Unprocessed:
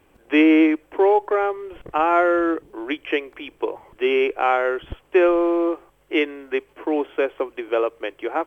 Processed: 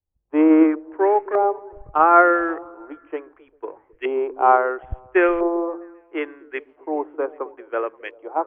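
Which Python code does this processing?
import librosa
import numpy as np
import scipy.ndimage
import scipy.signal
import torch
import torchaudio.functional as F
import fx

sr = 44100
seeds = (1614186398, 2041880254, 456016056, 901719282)

y = fx.filter_lfo_lowpass(x, sr, shape='saw_up', hz=0.74, low_hz=780.0, high_hz=2000.0, q=2.4)
y = fx.echo_stepped(y, sr, ms=133, hz=200.0, octaves=0.7, feedback_pct=70, wet_db=-9.0)
y = fx.band_widen(y, sr, depth_pct=100)
y = F.gain(torch.from_numpy(y), -3.5).numpy()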